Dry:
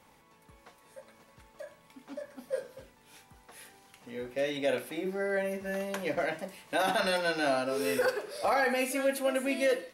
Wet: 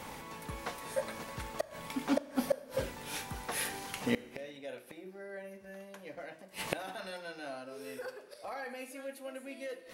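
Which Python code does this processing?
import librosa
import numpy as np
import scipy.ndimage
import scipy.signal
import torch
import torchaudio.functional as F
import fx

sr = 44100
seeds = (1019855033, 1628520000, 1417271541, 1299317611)

y = fx.gate_flip(x, sr, shuts_db=-33.0, range_db=-30)
y = fx.rev_schroeder(y, sr, rt60_s=1.4, comb_ms=27, drr_db=17.0)
y = y * librosa.db_to_amplitude(15.5)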